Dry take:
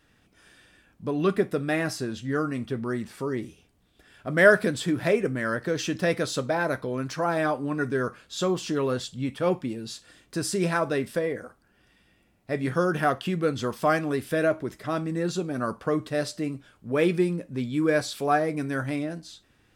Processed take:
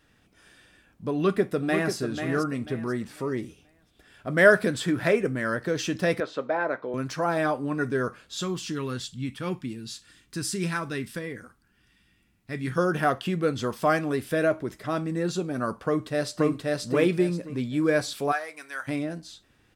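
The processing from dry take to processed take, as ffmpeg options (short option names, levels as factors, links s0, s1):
-filter_complex "[0:a]asplit=2[s0][s1];[s1]afade=t=in:st=1.13:d=0.01,afade=t=out:st=1.94:d=0.01,aecho=0:1:490|980|1470|1960:0.446684|0.134005|0.0402015|0.0120605[s2];[s0][s2]amix=inputs=2:normalize=0,asettb=1/sr,asplit=3[s3][s4][s5];[s3]atrim=end=4.714[s6];[s4]atrim=start=4.71:end=5.19,asetpts=PTS-STARTPTS,afade=t=in:d=0.004:c=qsin,afade=t=out:st=0.476:d=0.004:c=qsin,equalizer=f=1500:w=1.5:g=5[s7];[s5]atrim=start=5.186[s8];[s6][s7]acrossfade=d=0.004:c1=hsin:c2=qsin[s9];[s9][s8]acrossfade=d=0.004:c1=qsin:c2=hsin,asettb=1/sr,asplit=3[s10][s11][s12];[s10]atrim=end=6.204[s13];[s11]atrim=start=6.2:end=6.94,asetpts=PTS-STARTPTS,afade=t=in:d=0.004:c=qsin,afade=t=out:st=0.736:d=0.004:c=qsin,highpass=320,lowpass=2200[s14];[s12]atrim=start=6.936[s15];[s13][s14]acrossfade=d=0.004:c1=hsin:c2=qsin[s16];[s16][s15]acrossfade=d=0.004:c1=qsin:c2=hsin,asettb=1/sr,asplit=3[s17][s18][s19];[s17]atrim=end=8.414[s20];[s18]atrim=start=8.41:end=12.78,asetpts=PTS-STARTPTS,afade=t=in:d=0.004:c=qsin,afade=t=out:st=4.366:d=0.004:c=qsin,equalizer=f=600:t=o:w=1.2:g=-14[s21];[s19]atrim=start=12.776[s22];[s20][s21]acrossfade=d=0.004:c1=hsin:c2=qsin[s23];[s23][s22]acrossfade=d=0.004:c1=qsin:c2=hsin,asplit=2[s24][s25];[s25]afade=t=in:st=15.84:d=0.01,afade=t=out:st=16.54:d=0.01,aecho=0:1:530|1060|1590|2120:0.944061|0.236015|0.0590038|0.014751[s26];[s24][s26]amix=inputs=2:normalize=0,asplit=3[s27][s28][s29];[s27]afade=t=out:st=18.31:d=0.02[s30];[s28]highpass=1100,afade=t=in:st=18.31:d=0.02,afade=t=out:st=18.87:d=0.02[s31];[s29]afade=t=in:st=18.87:d=0.02[s32];[s30][s31][s32]amix=inputs=3:normalize=0"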